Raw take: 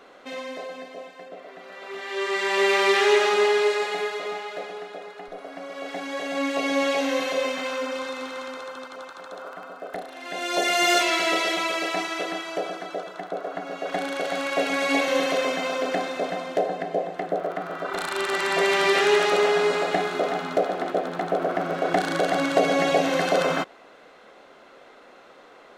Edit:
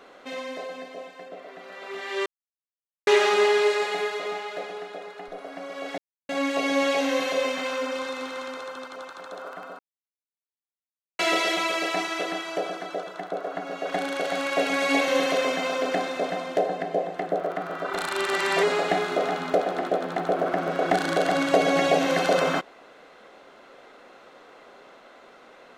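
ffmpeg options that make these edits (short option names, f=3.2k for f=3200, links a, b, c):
-filter_complex "[0:a]asplit=8[a][b][c][d][e][f][g][h];[a]atrim=end=2.26,asetpts=PTS-STARTPTS,afade=t=out:st=2.256:d=0.004:c=hsin[i];[b]atrim=start=2.26:end=3.07,asetpts=PTS-STARTPTS,volume=0[j];[c]atrim=start=3.07:end=5.98,asetpts=PTS-STARTPTS,afade=t=in:d=0.004:c=hsin,afade=t=out:st=2.906:d=0.004:c=hsin[k];[d]atrim=start=5.98:end=6.29,asetpts=PTS-STARTPTS,volume=0[l];[e]atrim=start=6.29:end=9.79,asetpts=PTS-STARTPTS,afade=t=in:d=0.004:c=hsin,afade=t=out:st=3.496:d=0.004:c=hsin[m];[f]atrim=start=9.79:end=11.19,asetpts=PTS-STARTPTS,volume=0[n];[g]atrim=start=11.19:end=18.632,asetpts=PTS-STARTPTS,afade=t=in:d=0.004:c=hsin[o];[h]atrim=start=19.658[p];[i][j][k][l][m][n][o]concat=n=7:v=0:a=1[q];[q][p]acrossfade=d=0.004:c1=hsin:c2=hsin"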